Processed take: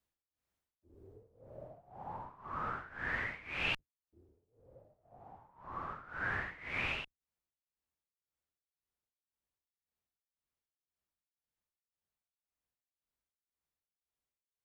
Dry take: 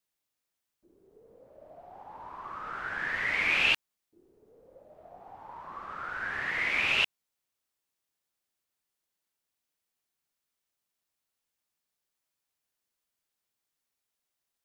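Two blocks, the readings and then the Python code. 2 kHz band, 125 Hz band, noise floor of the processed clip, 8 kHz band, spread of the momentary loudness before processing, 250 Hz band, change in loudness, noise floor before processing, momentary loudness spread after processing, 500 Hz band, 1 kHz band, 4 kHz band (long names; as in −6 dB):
−10.0 dB, +3.0 dB, below −85 dBFS, below −10 dB, 20 LU, −2.0 dB, −11.0 dB, below −85 dBFS, 18 LU, −4.5 dB, −4.5 dB, −12.5 dB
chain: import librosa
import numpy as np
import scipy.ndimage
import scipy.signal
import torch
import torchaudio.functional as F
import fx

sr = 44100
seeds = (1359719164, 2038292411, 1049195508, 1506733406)

y = fx.octave_divider(x, sr, octaves=2, level_db=4.0)
y = fx.high_shelf(y, sr, hz=2200.0, db=-10.0)
y = fx.rider(y, sr, range_db=4, speed_s=0.5)
y = y * (1.0 - 0.89 / 2.0 + 0.89 / 2.0 * np.cos(2.0 * np.pi * 1.9 * (np.arange(len(y)) / sr)))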